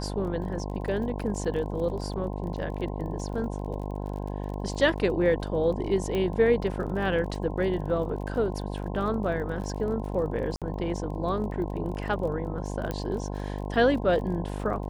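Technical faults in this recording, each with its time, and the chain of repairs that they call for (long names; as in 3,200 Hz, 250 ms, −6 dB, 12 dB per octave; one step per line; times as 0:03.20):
mains buzz 50 Hz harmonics 21 −33 dBFS
surface crackle 30 per second −37 dBFS
0:06.15: click −18 dBFS
0:10.56–0:10.62: drop-out 57 ms
0:12.91: click −17 dBFS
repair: click removal
hum removal 50 Hz, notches 21
repair the gap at 0:10.56, 57 ms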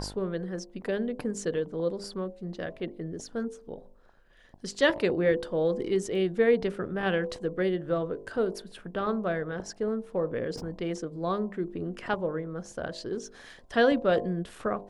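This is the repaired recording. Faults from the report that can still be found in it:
0:06.15: click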